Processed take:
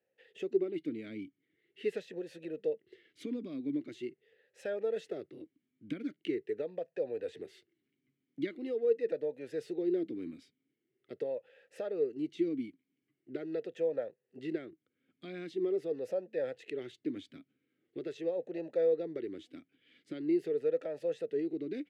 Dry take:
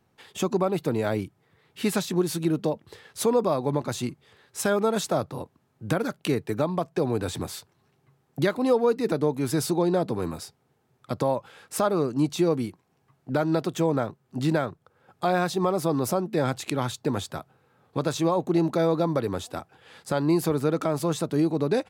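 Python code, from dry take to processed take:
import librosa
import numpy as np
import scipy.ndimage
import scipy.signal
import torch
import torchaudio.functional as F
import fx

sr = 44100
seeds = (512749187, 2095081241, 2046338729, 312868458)

y = fx.vowel_sweep(x, sr, vowels='e-i', hz=0.43)
y = y * 10.0 ** (-1.5 / 20.0)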